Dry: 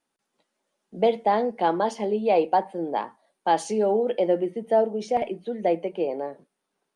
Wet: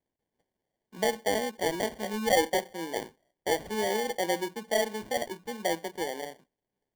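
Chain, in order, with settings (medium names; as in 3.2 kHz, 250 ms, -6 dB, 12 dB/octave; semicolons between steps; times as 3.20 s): 2.04–2.50 s: comb 3.8 ms, depth 83%; sample-rate reducer 1.3 kHz, jitter 0%; trim -7 dB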